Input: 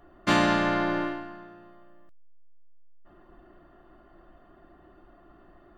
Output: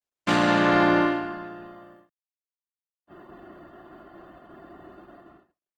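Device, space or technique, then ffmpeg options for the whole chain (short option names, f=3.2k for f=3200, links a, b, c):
video call: -af "highpass=100,dynaudnorm=f=130:g=9:m=9.5dB,agate=range=-46dB:threshold=-48dB:ratio=16:detection=peak" -ar 48000 -c:a libopus -b:a 16k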